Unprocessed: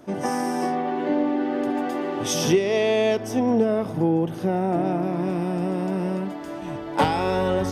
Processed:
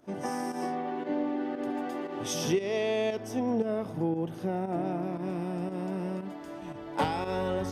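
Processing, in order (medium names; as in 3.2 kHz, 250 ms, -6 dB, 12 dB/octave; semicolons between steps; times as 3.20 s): volume shaper 116 bpm, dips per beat 1, -9 dB, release 100 ms; trim -8 dB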